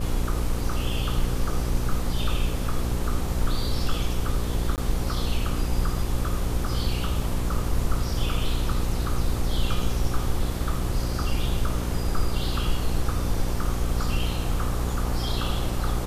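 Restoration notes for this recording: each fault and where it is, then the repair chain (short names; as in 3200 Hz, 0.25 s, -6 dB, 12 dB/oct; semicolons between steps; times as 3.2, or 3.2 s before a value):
buzz 60 Hz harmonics 9 -29 dBFS
4.76–4.78 gap 18 ms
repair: de-hum 60 Hz, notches 9; interpolate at 4.76, 18 ms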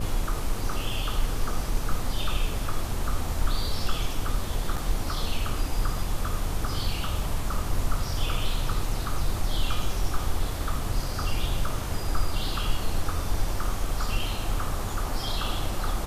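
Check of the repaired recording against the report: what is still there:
none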